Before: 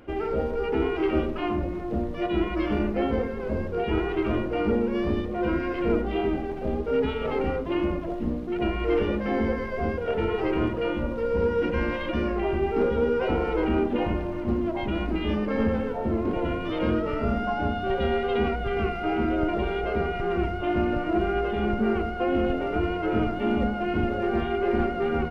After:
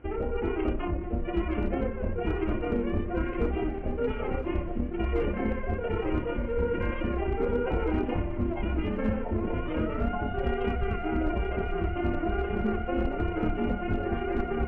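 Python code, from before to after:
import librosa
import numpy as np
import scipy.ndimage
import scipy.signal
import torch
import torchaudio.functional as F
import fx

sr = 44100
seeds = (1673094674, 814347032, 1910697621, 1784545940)

y = scipy.signal.sosfilt(scipy.signal.butter(8, 2900.0, 'lowpass', fs=sr, output='sos'), x)
y = fx.low_shelf(y, sr, hz=73.0, db=11.0)
y = np.clip(10.0 ** (14.5 / 20.0) * y, -1.0, 1.0) / 10.0 ** (14.5 / 20.0)
y = fx.stretch_grains(y, sr, factor=0.58, grain_ms=60.0)
y = fx.echo_wet_highpass(y, sr, ms=981, feedback_pct=68, hz=1800.0, wet_db=-10.5)
y = y * librosa.db_to_amplitude(-3.5)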